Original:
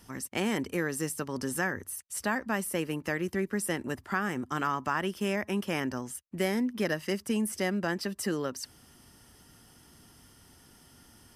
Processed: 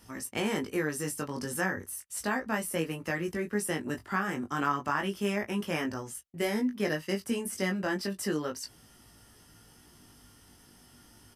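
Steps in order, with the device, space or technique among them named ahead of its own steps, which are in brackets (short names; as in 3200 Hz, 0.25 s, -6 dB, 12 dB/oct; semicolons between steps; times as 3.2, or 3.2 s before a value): 6.3–7.14 expander -33 dBFS; double-tracked vocal (doubler 17 ms -12 dB; chorus 0.33 Hz, delay 18.5 ms, depth 2.4 ms); gain +2.5 dB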